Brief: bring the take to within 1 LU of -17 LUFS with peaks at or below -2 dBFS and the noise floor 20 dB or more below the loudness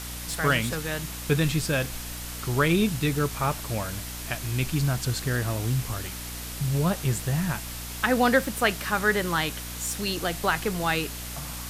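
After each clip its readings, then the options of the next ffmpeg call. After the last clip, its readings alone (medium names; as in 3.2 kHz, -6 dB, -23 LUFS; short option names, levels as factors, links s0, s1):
hum 60 Hz; highest harmonic 300 Hz; hum level -38 dBFS; noise floor -36 dBFS; noise floor target -47 dBFS; loudness -26.5 LUFS; peak level -7.5 dBFS; loudness target -17.0 LUFS
-> -af "bandreject=f=60:t=h:w=6,bandreject=f=120:t=h:w=6,bandreject=f=180:t=h:w=6,bandreject=f=240:t=h:w=6,bandreject=f=300:t=h:w=6"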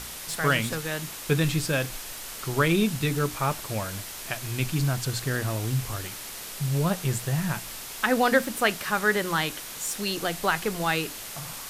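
hum not found; noise floor -39 dBFS; noise floor target -47 dBFS
-> -af "afftdn=nr=8:nf=-39"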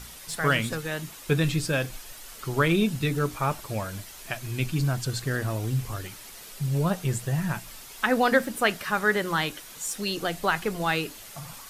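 noise floor -45 dBFS; noise floor target -47 dBFS
-> -af "afftdn=nr=6:nf=-45"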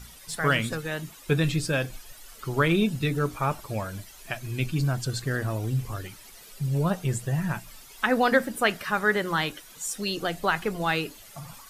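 noise floor -49 dBFS; loudness -27.5 LUFS; peak level -8.0 dBFS; loudness target -17.0 LUFS
-> -af "volume=3.35,alimiter=limit=0.794:level=0:latency=1"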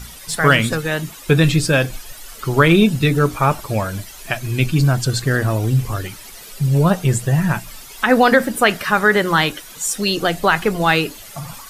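loudness -17.0 LUFS; peak level -2.0 dBFS; noise floor -38 dBFS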